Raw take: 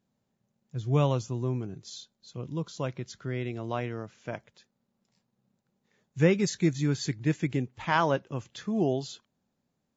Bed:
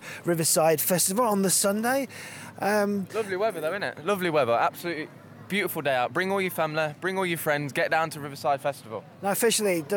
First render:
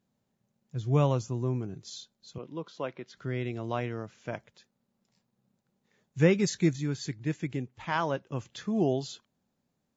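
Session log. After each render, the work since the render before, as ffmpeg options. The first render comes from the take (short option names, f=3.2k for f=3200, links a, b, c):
-filter_complex "[0:a]asettb=1/sr,asplit=3[a][b][c];[a]atrim=end=0.934[d];[b]atrim=start=0.93:end=1.68,asetpts=PTS-STARTPTS,afade=t=in:d=0.004:c=qsin,afade=t=out:st=0.746:d=0.004:c=qsin,equalizer=f=3.4k:t=o:w=0.77:g=-4.5[e];[c]atrim=start=1.676[f];[d][e]acrossfade=d=0.004:c1=hsin:c2=qsin[g];[g][f]acrossfade=d=0.004:c1=qsin:c2=hsin,asettb=1/sr,asplit=3[h][i][j];[h]atrim=end=2.384[k];[i]atrim=start=2.38:end=3.17,asetpts=PTS-STARTPTS,afade=t=in:d=0.004:c=qsin,afade=t=out:st=0.786:d=0.004:c=qsin,highpass=290,lowpass=3.3k[l];[j]atrim=start=3.166[m];[k][l]acrossfade=d=0.004:c1=hsin:c2=qsin[n];[n][m]acrossfade=d=0.004:c1=qsin:c2=hsin,asplit=3[o][p][q];[o]atrim=end=6.762[r];[p]atrim=start=6.758:end=8.322,asetpts=PTS-STARTPTS,volume=-4.5dB[s];[q]atrim=start=8.318[t];[r][s]acrossfade=d=0.004:c1=hsin:c2=hsin[u];[u][t]acrossfade=d=0.004:c1=hsin:c2=hsin"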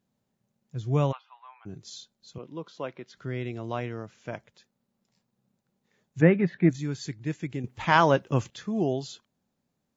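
-filter_complex "[0:a]asplit=3[a][b][c];[a]afade=t=out:st=1.11:d=0.02[d];[b]asuperpass=centerf=1700:order=12:qfactor=0.61,afade=t=in:st=1.11:d=0.02,afade=t=out:st=1.65:d=0.02[e];[c]afade=t=in:st=1.65:d=0.02[f];[d][e][f]amix=inputs=3:normalize=0,asplit=3[g][h][i];[g]afade=t=out:st=6.2:d=0.02[j];[h]highpass=130,equalizer=f=170:t=q:w=4:g=6,equalizer=f=290:t=q:w=4:g=7,equalizer=f=670:t=q:w=4:g=9,equalizer=f=1.8k:t=q:w=4:g=6,lowpass=f=2.5k:w=0.5412,lowpass=f=2.5k:w=1.3066,afade=t=in:st=6.2:d=0.02,afade=t=out:st=6.69:d=0.02[k];[i]afade=t=in:st=6.69:d=0.02[l];[j][k][l]amix=inputs=3:normalize=0,asplit=3[m][n][o];[m]atrim=end=7.642[p];[n]atrim=start=7.638:end=8.502,asetpts=PTS-STARTPTS,volume=9.5dB[q];[o]atrim=start=8.498[r];[p][q]acrossfade=d=0.004:c1=hsin:c2=hsin[s];[s][r]acrossfade=d=0.004:c1=hsin:c2=hsin"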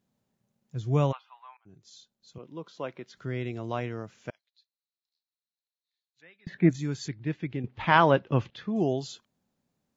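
-filter_complex "[0:a]asettb=1/sr,asplit=3[a][b][c];[a]atrim=end=4.304[d];[b]atrim=start=4.3:end=6.47,asetpts=PTS-STARTPTS,afade=t=in:d=0.004:c=qsin,afade=t=out:st=2.166:d=0.004:c=qsin,bandpass=f=4.1k:t=q:w=10[e];[c]atrim=start=6.466[f];[d][e]acrossfade=d=0.004:c1=hsin:c2=qsin[g];[g][f]acrossfade=d=0.004:c1=qsin:c2=hsin,asettb=1/sr,asplit=3[h][i][j];[h]atrim=end=7.084[k];[i]atrim=start=7.08:end=8.76,asetpts=PTS-STARTPTS,afade=t=in:d=0.004:c=qsin,afade=t=out:st=1.676:d=0.004:c=qsin,lowpass=f=4.1k:w=0.5412,lowpass=f=4.1k:w=1.3066[l];[j]atrim=start=8.756[m];[k][l]acrossfade=d=0.004:c1=hsin:c2=qsin[n];[n][m]acrossfade=d=0.004:c1=qsin:c2=hsin,asplit=2[o][p];[o]atrim=end=1.57,asetpts=PTS-STARTPTS,afade=t=out:st=1.566:d=0.004:c=hsin:silence=0.112202[q];[p]atrim=start=1.57,asetpts=PTS-STARTPTS,afade=t=in:d=1.39:silence=0.112202[r];[q][r]concat=n=2:v=0:a=1"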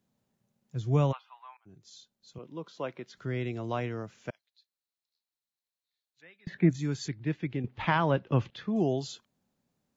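-filter_complex "[0:a]acrossover=split=210[a][b];[b]acompressor=threshold=-25dB:ratio=3[c];[a][c]amix=inputs=2:normalize=0"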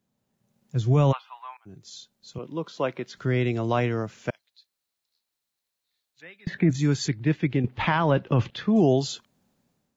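-af "alimiter=limit=-21dB:level=0:latency=1:release=11,dynaudnorm=f=190:g=5:m=9dB"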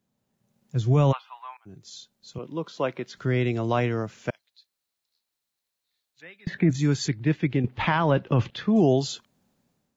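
-af anull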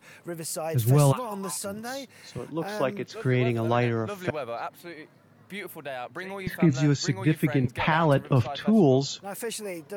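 -filter_complex "[1:a]volume=-10.5dB[a];[0:a][a]amix=inputs=2:normalize=0"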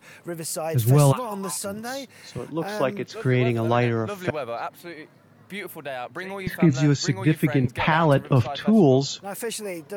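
-af "volume=3dB"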